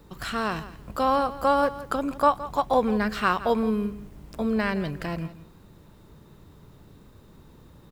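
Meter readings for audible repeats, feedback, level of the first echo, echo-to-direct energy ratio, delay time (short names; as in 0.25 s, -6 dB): 2, 16%, -15.5 dB, -15.5 dB, 0.167 s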